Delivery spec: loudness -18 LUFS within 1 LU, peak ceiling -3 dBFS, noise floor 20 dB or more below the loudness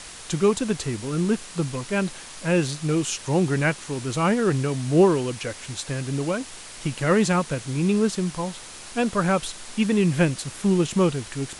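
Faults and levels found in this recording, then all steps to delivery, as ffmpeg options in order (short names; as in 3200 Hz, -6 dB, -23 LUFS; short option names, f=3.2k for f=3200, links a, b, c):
noise floor -41 dBFS; noise floor target -44 dBFS; loudness -24.0 LUFS; peak -7.0 dBFS; loudness target -18.0 LUFS
-> -af "afftdn=nr=6:nf=-41"
-af "volume=6dB,alimiter=limit=-3dB:level=0:latency=1"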